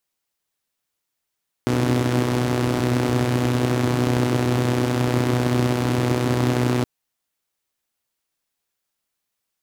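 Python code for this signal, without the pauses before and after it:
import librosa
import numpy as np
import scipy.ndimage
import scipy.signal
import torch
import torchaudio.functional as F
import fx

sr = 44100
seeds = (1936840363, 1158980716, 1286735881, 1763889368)

y = fx.engine_four(sr, seeds[0], length_s=5.17, rpm=3700, resonances_hz=(130.0, 270.0))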